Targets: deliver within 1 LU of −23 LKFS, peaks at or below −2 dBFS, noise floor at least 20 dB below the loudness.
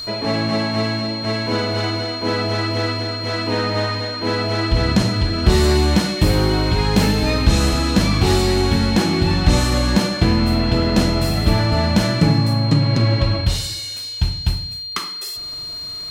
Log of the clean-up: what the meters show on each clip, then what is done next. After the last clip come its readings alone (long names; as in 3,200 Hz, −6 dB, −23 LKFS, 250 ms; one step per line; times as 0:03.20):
crackle rate 26 per second; interfering tone 4,200 Hz; level of the tone −27 dBFS; integrated loudness −18.5 LKFS; sample peak −3.0 dBFS; target loudness −23.0 LKFS
→ click removal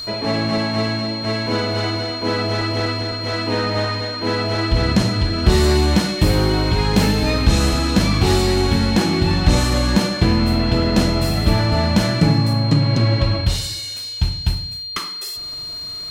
crackle rate 0.19 per second; interfering tone 4,200 Hz; level of the tone −27 dBFS
→ notch filter 4,200 Hz, Q 30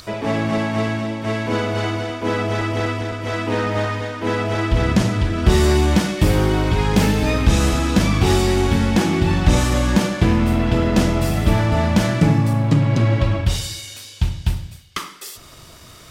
interfering tone none found; integrated loudness −19.0 LKFS; sample peak −3.0 dBFS; target loudness −23.0 LKFS
→ level −4 dB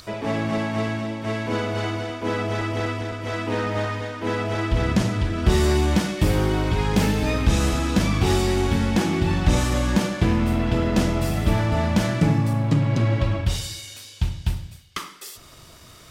integrated loudness −23.0 LKFS; sample peak −7.0 dBFS; background noise floor −47 dBFS